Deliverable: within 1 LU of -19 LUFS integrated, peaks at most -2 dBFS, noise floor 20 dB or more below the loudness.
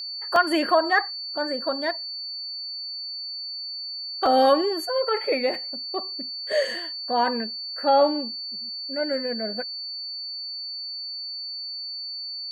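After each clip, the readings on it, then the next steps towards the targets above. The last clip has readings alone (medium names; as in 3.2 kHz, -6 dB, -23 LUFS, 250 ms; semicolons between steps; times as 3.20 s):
dropouts 2; longest dropout 1.4 ms; steady tone 4.5 kHz; tone level -31 dBFS; loudness -25.5 LUFS; peak level -7.5 dBFS; loudness target -19.0 LUFS
-> interpolate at 0.36/4.26 s, 1.4 ms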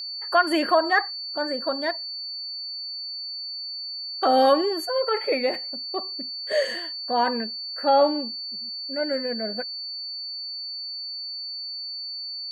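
dropouts 0; steady tone 4.5 kHz; tone level -31 dBFS
-> band-stop 4.5 kHz, Q 30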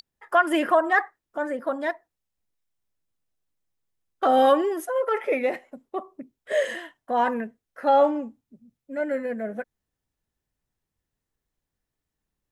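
steady tone not found; loudness -24.0 LUFS; peak level -7.5 dBFS; loudness target -19.0 LUFS
-> trim +5 dB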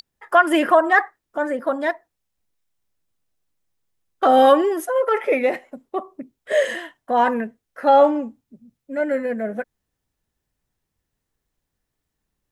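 loudness -19.0 LUFS; peak level -2.5 dBFS; noise floor -80 dBFS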